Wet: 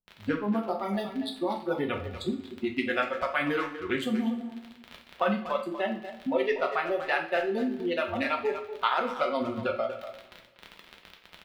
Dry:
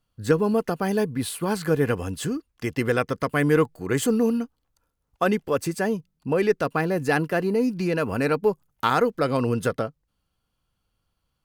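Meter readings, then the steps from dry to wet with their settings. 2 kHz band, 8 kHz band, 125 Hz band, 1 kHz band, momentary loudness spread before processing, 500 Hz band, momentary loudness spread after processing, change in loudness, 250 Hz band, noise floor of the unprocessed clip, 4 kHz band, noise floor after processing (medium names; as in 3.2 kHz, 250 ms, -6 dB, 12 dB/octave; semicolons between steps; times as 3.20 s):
-2.5 dB, under -15 dB, -14.0 dB, -2.5 dB, 7 LU, -6.5 dB, 7 LU, -5.5 dB, -6.0 dB, -77 dBFS, -1.0 dB, -56 dBFS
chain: local Wiener filter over 25 samples; spectral noise reduction 24 dB; crackle 40 per s -37 dBFS; harmonic-percussive split percussive +8 dB; in parallel at +0.5 dB: peak limiter -18 dBFS, peak gain reduction 16.5 dB; on the sum: compression 2:1, threshold -33 dBFS, peak gain reduction 13.5 dB; resonant high shelf 5 kHz -13.5 dB, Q 1.5; tremolo 14 Hz, depth 29%; speakerphone echo 240 ms, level -10 dB; two-slope reverb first 0.39 s, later 1.8 s, from -18 dB, DRR 1.5 dB; trim -1 dB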